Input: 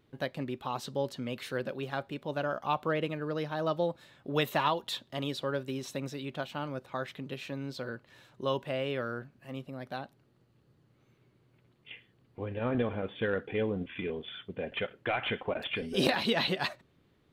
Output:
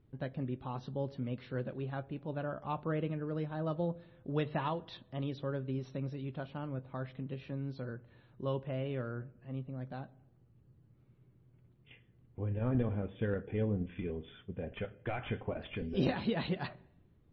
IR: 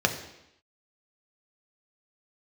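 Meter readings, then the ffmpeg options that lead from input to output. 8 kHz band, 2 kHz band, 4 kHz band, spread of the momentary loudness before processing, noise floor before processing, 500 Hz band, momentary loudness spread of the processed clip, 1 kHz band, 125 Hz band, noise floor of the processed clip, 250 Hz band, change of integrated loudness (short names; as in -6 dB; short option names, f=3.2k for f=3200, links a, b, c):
under -20 dB, -10.5 dB, -13.5 dB, 13 LU, -68 dBFS, -5.5 dB, 10 LU, -8.0 dB, +3.0 dB, -66 dBFS, -1.5 dB, -4.0 dB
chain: -filter_complex "[0:a]aemphasis=mode=reproduction:type=riaa,asplit=2[a][b];[1:a]atrim=start_sample=2205,lowpass=3.6k,adelay=20[c];[b][c]afir=irnorm=-1:irlink=0,volume=-27dB[d];[a][d]amix=inputs=2:normalize=0,volume=-8dB" -ar 24000 -c:a libmp3lame -b:a 24k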